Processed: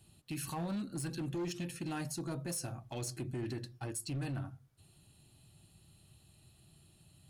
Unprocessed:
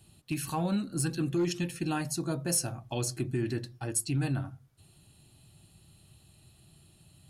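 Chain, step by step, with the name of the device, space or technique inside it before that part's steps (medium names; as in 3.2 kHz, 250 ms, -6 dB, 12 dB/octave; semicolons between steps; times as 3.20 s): limiter into clipper (peak limiter -25.5 dBFS, peak gain reduction 7.5 dB; hard clipper -29.5 dBFS, distortion -17 dB); trim -4 dB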